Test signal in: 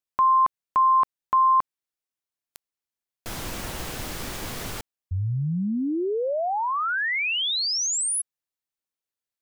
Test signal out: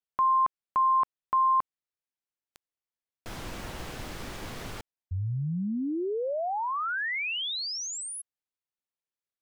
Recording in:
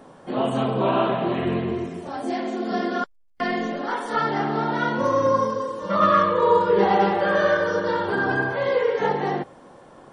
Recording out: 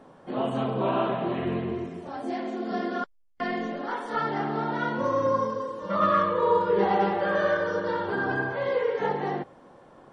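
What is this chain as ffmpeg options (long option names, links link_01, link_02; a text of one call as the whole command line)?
ffmpeg -i in.wav -af "lowpass=frequency=4000:poles=1,volume=-4.5dB" out.wav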